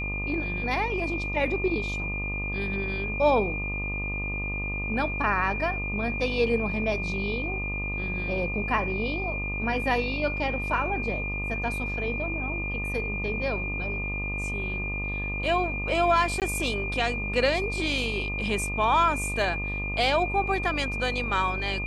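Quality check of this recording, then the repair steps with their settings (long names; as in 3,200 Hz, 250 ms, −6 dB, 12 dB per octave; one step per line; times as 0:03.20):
mains buzz 50 Hz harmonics 25 −33 dBFS
whistle 2,400 Hz −31 dBFS
0:16.40–0:16.42: drop-out 18 ms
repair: hum removal 50 Hz, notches 25
notch filter 2,400 Hz, Q 30
repair the gap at 0:16.40, 18 ms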